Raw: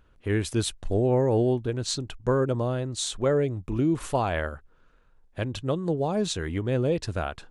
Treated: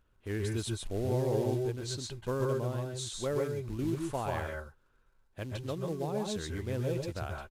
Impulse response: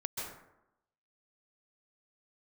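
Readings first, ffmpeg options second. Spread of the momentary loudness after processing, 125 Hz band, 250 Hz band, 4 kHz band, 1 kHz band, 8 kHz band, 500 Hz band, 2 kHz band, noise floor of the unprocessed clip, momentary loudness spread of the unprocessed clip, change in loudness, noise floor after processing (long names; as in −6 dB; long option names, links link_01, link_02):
9 LU, −6.5 dB, −8.5 dB, −8.0 dB, −8.0 dB, −8.0 dB, −7.5 dB, −7.5 dB, −59 dBFS, 8 LU, −7.5 dB, −69 dBFS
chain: -filter_complex "[0:a]acrusher=bits=5:mode=log:mix=0:aa=0.000001,aresample=32000,aresample=44100[link_01];[1:a]atrim=start_sample=2205,atrim=end_sample=6615[link_02];[link_01][link_02]afir=irnorm=-1:irlink=0,volume=-8dB"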